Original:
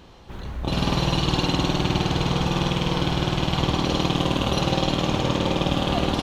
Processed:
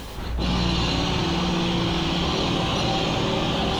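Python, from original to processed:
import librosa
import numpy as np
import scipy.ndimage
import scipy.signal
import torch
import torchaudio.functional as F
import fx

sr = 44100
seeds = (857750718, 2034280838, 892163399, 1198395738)

y = fx.air_absorb(x, sr, metres=65.0)
y = fx.dmg_noise_colour(y, sr, seeds[0], colour='pink', level_db=-61.0)
y = fx.high_shelf(y, sr, hz=2900.0, db=7.0)
y = fx.doubler(y, sr, ms=18.0, db=-8.5)
y = fx.echo_feedback(y, sr, ms=84, feedback_pct=16, wet_db=-10.0)
y = fx.stretch_vocoder_free(y, sr, factor=0.61)
y = fx.env_flatten(y, sr, amount_pct=50)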